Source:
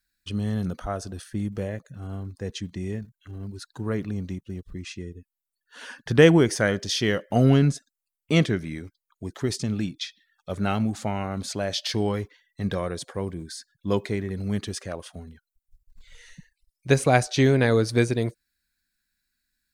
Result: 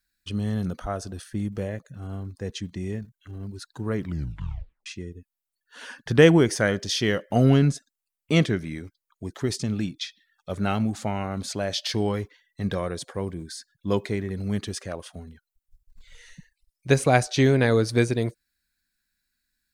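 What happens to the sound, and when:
3.97 s: tape stop 0.89 s

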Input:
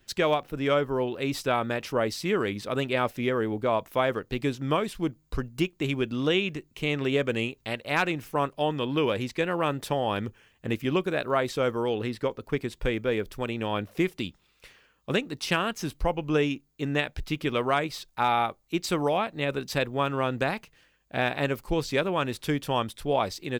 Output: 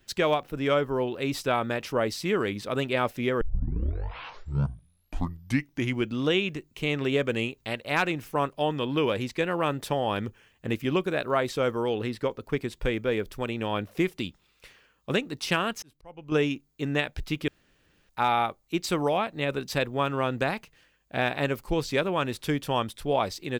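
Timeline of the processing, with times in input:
3.41 s: tape start 2.76 s
15.72–16.32 s: slow attack 789 ms
17.48–18.09 s: room tone

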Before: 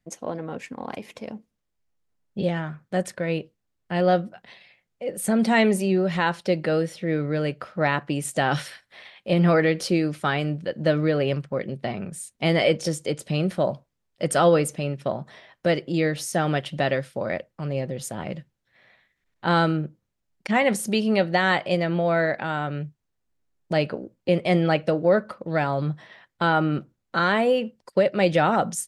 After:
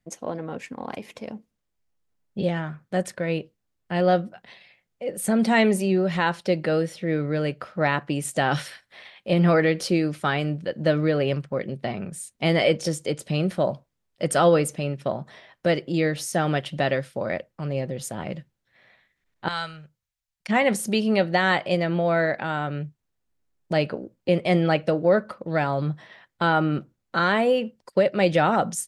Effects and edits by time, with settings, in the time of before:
19.48–20.47 s: amplifier tone stack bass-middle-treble 10-0-10

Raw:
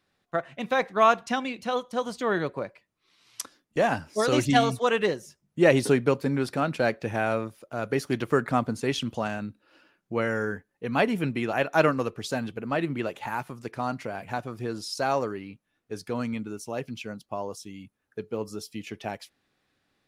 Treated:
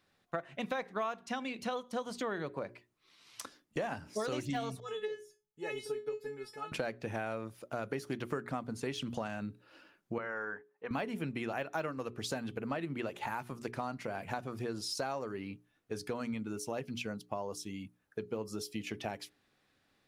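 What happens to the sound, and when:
4.80–6.72 s: feedback comb 430 Hz, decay 0.2 s, mix 100%
10.18–10.91 s: band-pass filter 1.1 kHz, Q 1.2
whole clip: de-esser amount 70%; hum notches 60/120/180/240/300/360/420 Hz; compression 6:1, threshold -34 dBFS

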